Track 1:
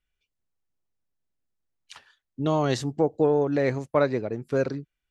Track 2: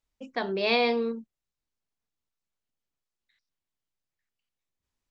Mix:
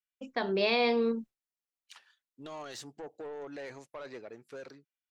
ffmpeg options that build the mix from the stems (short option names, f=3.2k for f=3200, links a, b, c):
-filter_complex "[0:a]highpass=f=1.1k:p=1,alimiter=limit=-24dB:level=0:latency=1:release=20,asoftclip=type=tanh:threshold=-31dB,volume=-11.5dB[a];[1:a]agate=range=-33dB:threshold=-44dB:ratio=3:detection=peak,volume=-1.5dB[b];[a][b]amix=inputs=2:normalize=0,dynaudnorm=f=110:g=11:m=6dB,alimiter=limit=-17.5dB:level=0:latency=1:release=442"